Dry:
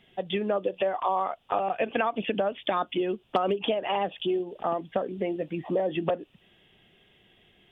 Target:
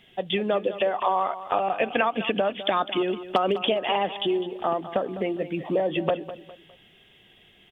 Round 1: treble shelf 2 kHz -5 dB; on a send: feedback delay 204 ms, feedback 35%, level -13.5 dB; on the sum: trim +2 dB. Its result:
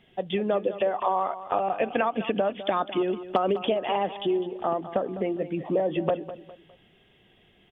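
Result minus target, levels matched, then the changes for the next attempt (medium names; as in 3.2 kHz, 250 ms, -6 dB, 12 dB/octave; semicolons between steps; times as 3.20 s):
4 kHz band -6.0 dB
change: treble shelf 2 kHz +5.5 dB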